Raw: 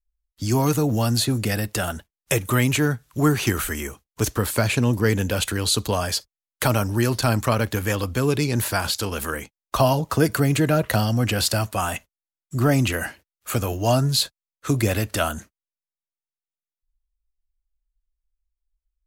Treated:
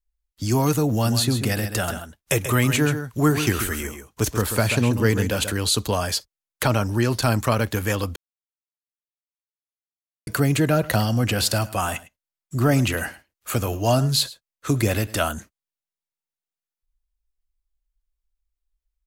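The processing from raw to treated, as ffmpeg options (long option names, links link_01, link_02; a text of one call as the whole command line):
ffmpeg -i in.wav -filter_complex "[0:a]asplit=3[link_01][link_02][link_03];[link_01]afade=type=out:start_time=1.04:duration=0.02[link_04];[link_02]aecho=1:1:135:0.355,afade=type=in:start_time=1.04:duration=0.02,afade=type=out:start_time=5.5:duration=0.02[link_05];[link_03]afade=type=in:start_time=5.5:duration=0.02[link_06];[link_04][link_05][link_06]amix=inputs=3:normalize=0,asettb=1/sr,asplit=3[link_07][link_08][link_09];[link_07]atrim=end=6.634[link_10];[link_08]atrim=start=6.63:end=7.1,asetpts=PTS-STARTPTS,afade=type=in:duration=0.004:curve=qsin,afade=type=out:start_time=0.466:duration=0.004:curve=qsin,acrossover=split=6700[link_11][link_12];[link_12]acompressor=threshold=-42dB:ratio=4:attack=1:release=60[link_13];[link_11][link_13]amix=inputs=2:normalize=0[link_14];[link_09]atrim=start=7.096[link_15];[link_10][link_14]acrossfade=duration=0.004:curve1=hsin:curve2=qsin[link_16];[link_16][link_15]acrossfade=duration=0.004:curve1=qsin:curve2=hsin,asplit=3[link_17][link_18][link_19];[link_17]afade=type=out:start_time=10.8:duration=0.02[link_20];[link_18]aecho=1:1:106:0.112,afade=type=in:start_time=10.8:duration=0.02,afade=type=out:start_time=15.15:duration=0.02[link_21];[link_19]afade=type=in:start_time=15.15:duration=0.02[link_22];[link_20][link_21][link_22]amix=inputs=3:normalize=0,asplit=3[link_23][link_24][link_25];[link_23]atrim=end=8.16,asetpts=PTS-STARTPTS,afade=type=out:start_time=8.156:duration=0.004:curve=hsin[link_26];[link_24]atrim=start=8.16:end=10.27,asetpts=PTS-STARTPTS,volume=0[link_27];[link_25]atrim=start=10.27,asetpts=PTS-STARTPTS,afade=type=in:duration=0.004:curve=hsin[link_28];[link_26][link_27][link_28]concat=n=3:v=0:a=1" out.wav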